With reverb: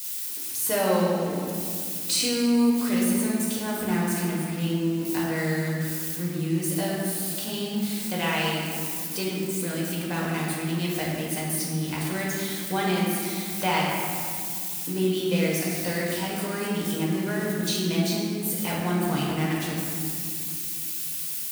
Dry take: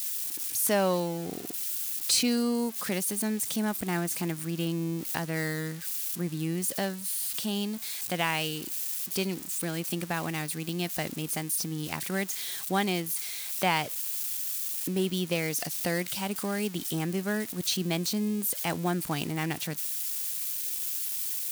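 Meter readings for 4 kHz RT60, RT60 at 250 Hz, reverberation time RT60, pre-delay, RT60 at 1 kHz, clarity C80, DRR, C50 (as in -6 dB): 1.4 s, 3.5 s, 2.3 s, 4 ms, 2.2 s, 0.5 dB, -5.5 dB, -1.0 dB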